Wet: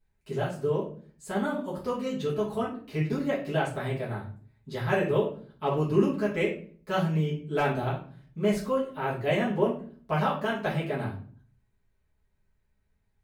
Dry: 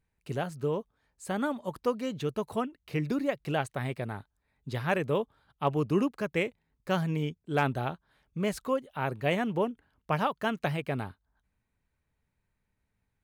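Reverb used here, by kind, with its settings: simulated room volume 39 m³, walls mixed, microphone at 1.5 m; trim -7.5 dB

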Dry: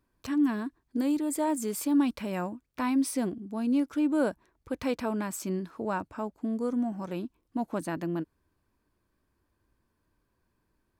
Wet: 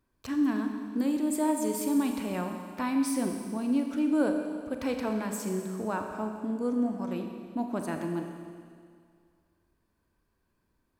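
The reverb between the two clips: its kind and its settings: Schroeder reverb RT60 2.1 s, combs from 29 ms, DRR 4 dB; trim -1.5 dB

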